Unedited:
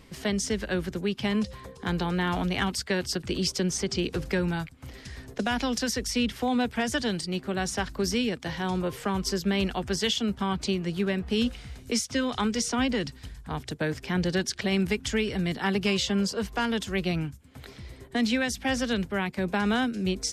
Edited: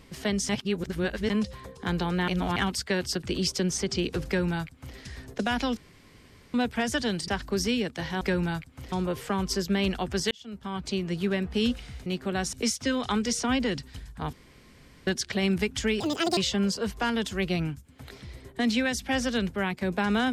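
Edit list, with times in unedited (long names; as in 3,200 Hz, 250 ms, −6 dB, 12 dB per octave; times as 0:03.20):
0:00.49–0:01.30: reverse
0:02.28–0:02.56: reverse
0:04.26–0:04.97: duplicate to 0:08.68
0:05.77–0:06.54: fill with room tone
0:07.28–0:07.75: move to 0:11.82
0:10.07–0:10.88: fade in
0:13.62–0:14.36: fill with room tone
0:15.29–0:15.93: play speed 172%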